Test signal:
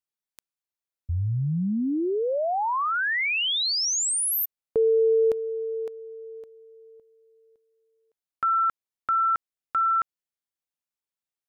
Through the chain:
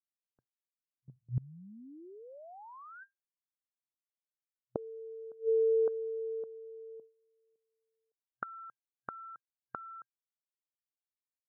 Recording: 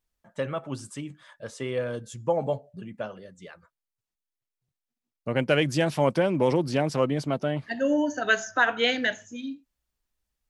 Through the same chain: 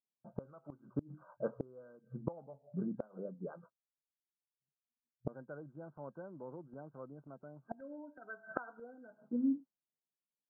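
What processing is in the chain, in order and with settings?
FFT band-pass 120–1600 Hz; gate with hold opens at -53 dBFS, hold 25 ms, range -17 dB; level-controlled noise filter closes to 660 Hz, open at -20 dBFS; inverted gate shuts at -26 dBFS, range -28 dB; trim +3 dB

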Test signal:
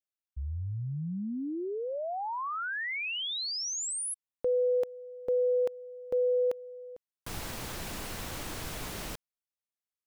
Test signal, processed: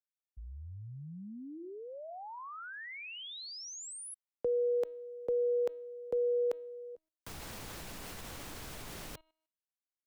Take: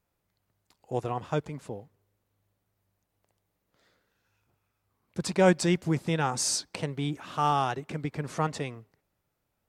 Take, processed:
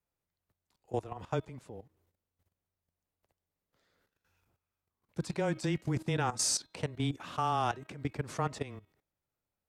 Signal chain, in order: frequency shift -13 Hz; de-hum 317.1 Hz, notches 13; level held to a coarse grid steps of 15 dB

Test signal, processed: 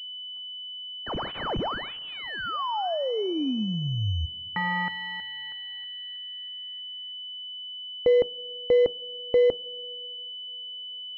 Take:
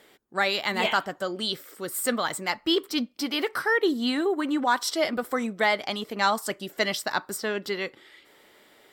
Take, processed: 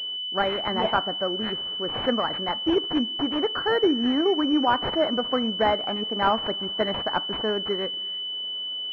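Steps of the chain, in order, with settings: two-slope reverb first 0.22 s, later 2.8 s, from -18 dB, DRR 16 dB; class-D stage that switches slowly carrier 3 kHz; trim +3 dB

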